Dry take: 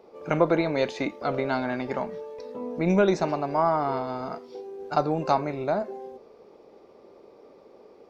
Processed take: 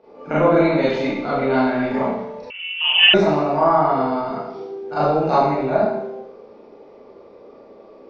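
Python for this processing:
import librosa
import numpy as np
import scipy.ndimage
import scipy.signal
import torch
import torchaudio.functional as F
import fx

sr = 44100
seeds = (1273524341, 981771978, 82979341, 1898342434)

y = fx.air_absorb(x, sr, metres=150.0)
y = fx.rev_schroeder(y, sr, rt60_s=0.81, comb_ms=27, drr_db=-10.0)
y = fx.freq_invert(y, sr, carrier_hz=3200, at=(2.5, 3.14))
y = y * librosa.db_to_amplitude(-2.0)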